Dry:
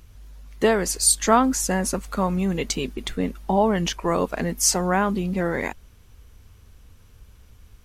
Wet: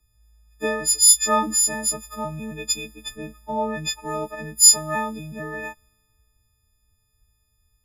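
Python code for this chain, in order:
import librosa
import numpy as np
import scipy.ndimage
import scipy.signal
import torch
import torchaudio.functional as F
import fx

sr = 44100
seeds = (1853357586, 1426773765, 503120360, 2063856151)

y = fx.freq_snap(x, sr, grid_st=6)
y = fx.band_widen(y, sr, depth_pct=40)
y = y * 10.0 ** (-9.0 / 20.0)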